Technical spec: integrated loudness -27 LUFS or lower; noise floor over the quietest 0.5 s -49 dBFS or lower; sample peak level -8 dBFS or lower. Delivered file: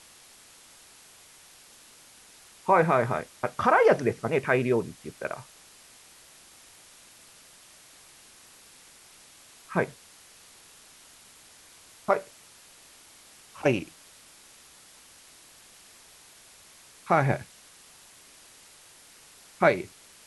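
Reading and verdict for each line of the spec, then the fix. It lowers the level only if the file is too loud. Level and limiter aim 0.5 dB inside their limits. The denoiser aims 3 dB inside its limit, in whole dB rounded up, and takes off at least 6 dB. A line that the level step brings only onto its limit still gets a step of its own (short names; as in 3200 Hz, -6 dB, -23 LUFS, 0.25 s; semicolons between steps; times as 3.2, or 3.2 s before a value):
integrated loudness -26.0 LUFS: fail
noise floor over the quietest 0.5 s -53 dBFS: OK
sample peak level -7.5 dBFS: fail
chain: gain -1.5 dB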